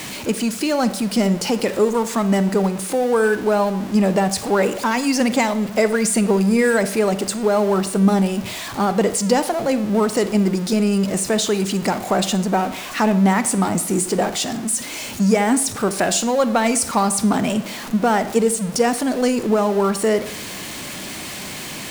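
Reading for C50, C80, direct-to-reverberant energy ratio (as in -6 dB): 13.5 dB, 16.5 dB, 12.0 dB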